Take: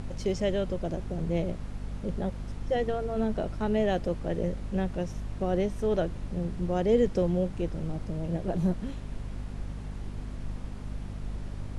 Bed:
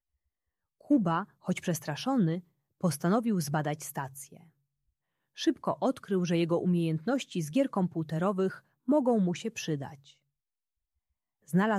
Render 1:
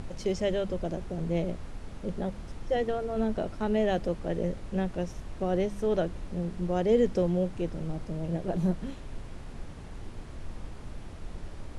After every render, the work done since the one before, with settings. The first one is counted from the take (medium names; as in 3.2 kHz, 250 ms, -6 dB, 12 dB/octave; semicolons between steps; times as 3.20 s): de-hum 50 Hz, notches 5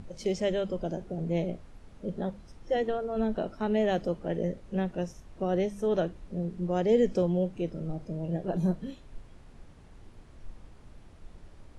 noise print and reduce 10 dB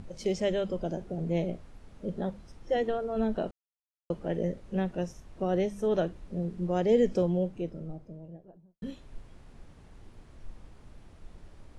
3.51–4.10 s: mute; 7.07–8.82 s: studio fade out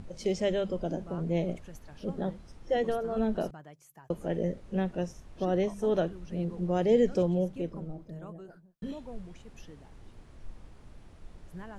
add bed -18.5 dB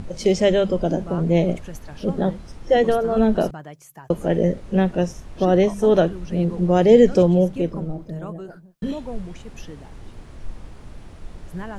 trim +11.5 dB